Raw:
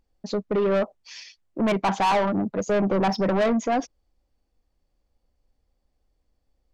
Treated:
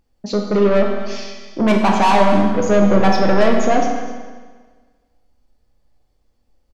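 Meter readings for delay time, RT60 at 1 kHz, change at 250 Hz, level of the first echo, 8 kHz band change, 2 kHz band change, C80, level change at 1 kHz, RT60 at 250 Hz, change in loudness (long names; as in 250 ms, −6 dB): 254 ms, 1.5 s, +8.5 dB, −14.5 dB, can't be measured, +8.5 dB, 4.5 dB, +8.0 dB, 1.5 s, +7.5 dB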